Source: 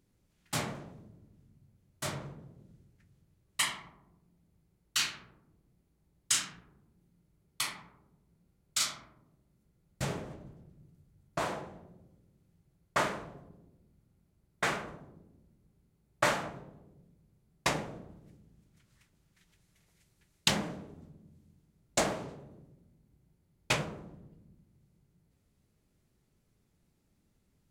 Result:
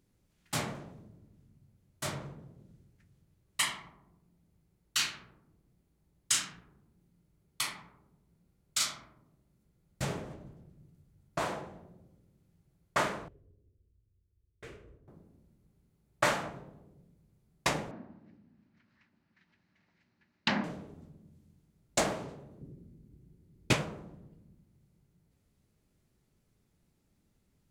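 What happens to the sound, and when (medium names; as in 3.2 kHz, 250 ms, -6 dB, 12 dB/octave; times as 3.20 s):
13.28–15.08 s: FFT filter 100 Hz 0 dB, 170 Hz -20 dB, 440 Hz -8 dB, 770 Hz -29 dB, 2.7 kHz -18 dB, 3.9 kHz -22 dB
17.91–20.64 s: cabinet simulation 130–4200 Hz, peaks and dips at 140 Hz -8 dB, 240 Hz +9 dB, 450 Hz -8 dB, 940 Hz +3 dB, 1.7 kHz +5 dB, 3.4 kHz -8 dB
22.61–23.73 s: resonant low shelf 510 Hz +9 dB, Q 1.5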